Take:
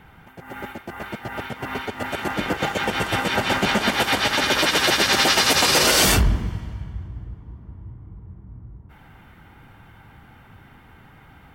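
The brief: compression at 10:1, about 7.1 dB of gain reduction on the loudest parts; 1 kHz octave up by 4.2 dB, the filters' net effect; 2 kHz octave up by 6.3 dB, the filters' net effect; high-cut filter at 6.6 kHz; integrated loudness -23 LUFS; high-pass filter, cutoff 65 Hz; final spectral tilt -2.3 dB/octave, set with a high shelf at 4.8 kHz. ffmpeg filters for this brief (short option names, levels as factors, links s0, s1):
-af "highpass=65,lowpass=6600,equalizer=f=1000:t=o:g=3.5,equalizer=f=2000:t=o:g=5.5,highshelf=f=4800:g=8,acompressor=threshold=0.141:ratio=10,volume=0.794"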